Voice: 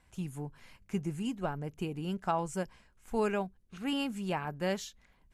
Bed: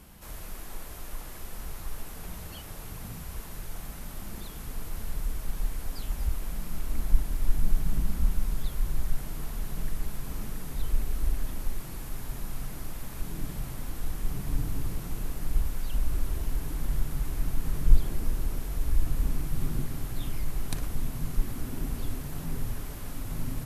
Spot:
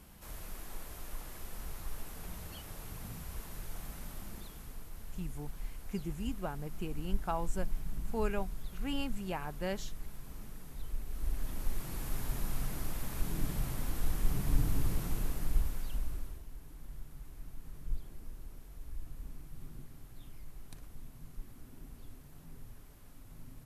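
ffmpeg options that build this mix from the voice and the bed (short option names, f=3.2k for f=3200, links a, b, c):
-filter_complex "[0:a]adelay=5000,volume=-4.5dB[a];[1:a]volume=7dB,afade=t=out:st=4.03:d=0.84:silence=0.446684,afade=t=in:st=11.05:d=1.07:silence=0.266073,afade=t=out:st=15.02:d=1.41:silence=0.125893[b];[a][b]amix=inputs=2:normalize=0"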